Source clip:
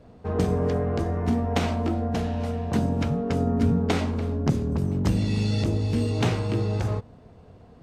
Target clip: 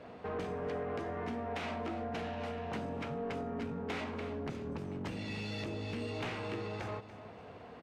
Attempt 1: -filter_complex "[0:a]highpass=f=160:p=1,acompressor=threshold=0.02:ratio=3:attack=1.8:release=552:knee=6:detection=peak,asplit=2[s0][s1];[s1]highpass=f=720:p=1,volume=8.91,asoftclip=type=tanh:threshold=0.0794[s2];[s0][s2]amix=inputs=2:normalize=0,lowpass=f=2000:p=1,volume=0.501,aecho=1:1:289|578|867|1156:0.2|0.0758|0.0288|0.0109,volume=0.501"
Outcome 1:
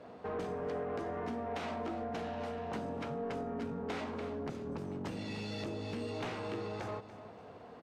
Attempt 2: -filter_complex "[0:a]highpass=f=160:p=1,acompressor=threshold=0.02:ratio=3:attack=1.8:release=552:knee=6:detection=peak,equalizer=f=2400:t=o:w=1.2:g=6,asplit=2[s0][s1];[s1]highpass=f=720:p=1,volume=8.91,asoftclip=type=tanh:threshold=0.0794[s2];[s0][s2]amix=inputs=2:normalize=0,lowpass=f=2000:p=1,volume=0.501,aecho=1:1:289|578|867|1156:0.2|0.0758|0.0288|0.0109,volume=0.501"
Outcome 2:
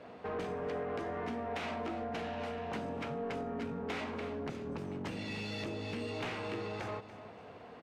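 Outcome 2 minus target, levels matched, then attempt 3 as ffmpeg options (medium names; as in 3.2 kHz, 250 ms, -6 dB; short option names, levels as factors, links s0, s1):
125 Hz band -2.5 dB
-filter_complex "[0:a]highpass=f=57:p=1,acompressor=threshold=0.02:ratio=3:attack=1.8:release=552:knee=6:detection=peak,equalizer=f=2400:t=o:w=1.2:g=6,asplit=2[s0][s1];[s1]highpass=f=720:p=1,volume=8.91,asoftclip=type=tanh:threshold=0.0794[s2];[s0][s2]amix=inputs=2:normalize=0,lowpass=f=2000:p=1,volume=0.501,aecho=1:1:289|578|867|1156:0.2|0.0758|0.0288|0.0109,volume=0.501"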